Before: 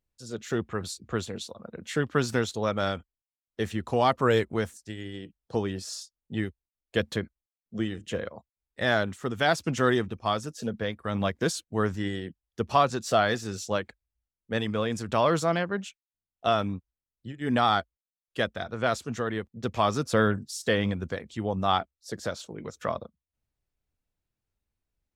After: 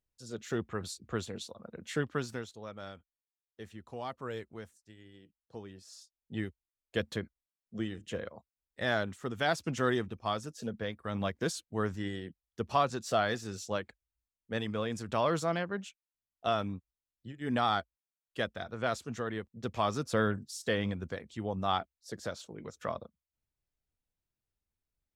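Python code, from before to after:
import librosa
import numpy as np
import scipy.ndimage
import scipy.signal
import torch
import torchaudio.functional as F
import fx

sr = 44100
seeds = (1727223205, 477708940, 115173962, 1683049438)

y = fx.gain(x, sr, db=fx.line((2.0, -5.0), (2.55, -17.0), (5.83, -17.0), (6.36, -6.0)))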